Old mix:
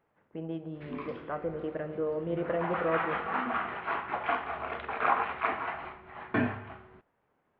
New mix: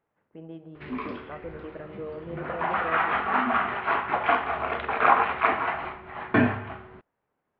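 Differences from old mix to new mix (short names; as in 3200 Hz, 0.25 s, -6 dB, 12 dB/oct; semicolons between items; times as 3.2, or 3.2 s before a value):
speech -5.0 dB; background +7.5 dB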